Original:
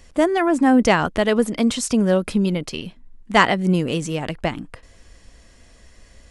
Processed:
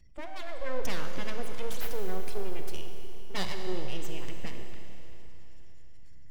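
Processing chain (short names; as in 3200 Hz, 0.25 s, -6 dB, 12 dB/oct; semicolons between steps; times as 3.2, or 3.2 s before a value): spectral gate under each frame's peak -25 dB strong; passive tone stack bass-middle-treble 6-0-2; full-wave rectifier; Schroeder reverb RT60 3.5 s, combs from 31 ms, DRR 4.5 dB; gain +5 dB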